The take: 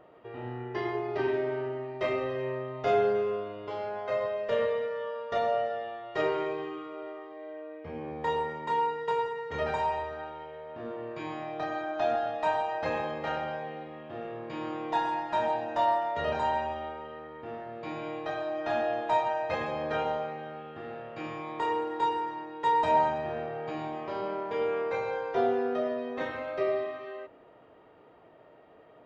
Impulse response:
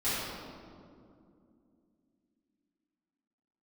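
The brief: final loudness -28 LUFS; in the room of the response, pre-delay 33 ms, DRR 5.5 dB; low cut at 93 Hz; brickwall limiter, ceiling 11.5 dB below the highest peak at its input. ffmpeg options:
-filter_complex "[0:a]highpass=93,alimiter=level_in=1.5dB:limit=-24dB:level=0:latency=1,volume=-1.5dB,asplit=2[a][b];[1:a]atrim=start_sample=2205,adelay=33[c];[b][c]afir=irnorm=-1:irlink=0,volume=-15dB[d];[a][d]amix=inputs=2:normalize=0,volume=5.5dB"

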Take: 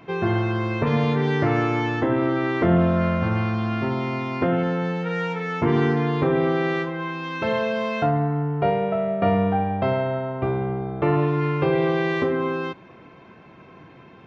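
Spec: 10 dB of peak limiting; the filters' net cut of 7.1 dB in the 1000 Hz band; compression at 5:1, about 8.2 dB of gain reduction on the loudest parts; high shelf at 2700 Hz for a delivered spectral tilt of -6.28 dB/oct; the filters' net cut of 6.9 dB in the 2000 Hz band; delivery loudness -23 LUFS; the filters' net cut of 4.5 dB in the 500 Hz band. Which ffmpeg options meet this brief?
-af "equalizer=f=500:t=o:g=-4,equalizer=f=1k:t=o:g=-6.5,equalizer=f=2k:t=o:g=-3,highshelf=f=2.7k:g=-8,acompressor=threshold=-26dB:ratio=5,volume=12dB,alimiter=limit=-15dB:level=0:latency=1"

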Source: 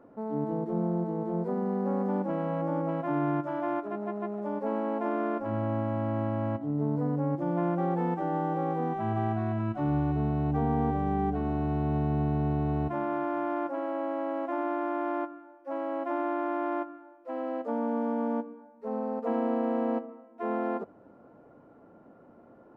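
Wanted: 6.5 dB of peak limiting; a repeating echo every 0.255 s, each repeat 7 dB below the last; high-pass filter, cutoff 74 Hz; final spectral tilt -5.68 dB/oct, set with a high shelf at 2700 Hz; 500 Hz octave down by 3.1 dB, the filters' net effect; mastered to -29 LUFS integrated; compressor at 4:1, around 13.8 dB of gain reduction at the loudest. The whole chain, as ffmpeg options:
-af "highpass=74,equalizer=f=500:t=o:g=-4.5,highshelf=f=2.7k:g=8,acompressor=threshold=-43dB:ratio=4,alimiter=level_in=15dB:limit=-24dB:level=0:latency=1,volume=-15dB,aecho=1:1:255|510|765|1020|1275:0.447|0.201|0.0905|0.0407|0.0183,volume=18.5dB"

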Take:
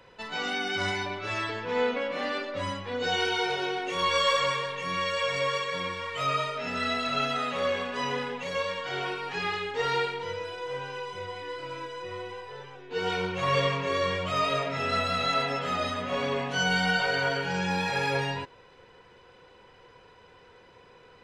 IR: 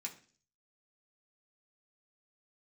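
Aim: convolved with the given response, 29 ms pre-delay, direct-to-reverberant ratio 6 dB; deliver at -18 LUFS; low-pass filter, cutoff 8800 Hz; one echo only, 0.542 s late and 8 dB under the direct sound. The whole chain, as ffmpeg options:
-filter_complex "[0:a]lowpass=8.8k,aecho=1:1:542:0.398,asplit=2[a][b];[1:a]atrim=start_sample=2205,adelay=29[c];[b][c]afir=irnorm=-1:irlink=0,volume=-4dB[d];[a][d]amix=inputs=2:normalize=0,volume=9.5dB"

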